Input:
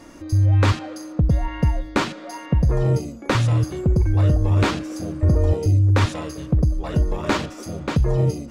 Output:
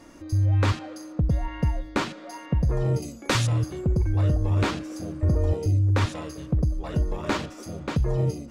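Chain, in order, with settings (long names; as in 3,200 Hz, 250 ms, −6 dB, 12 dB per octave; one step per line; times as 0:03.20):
0:03.02–0:03.47: high-shelf EQ 2,800 Hz +11.5 dB
level −5 dB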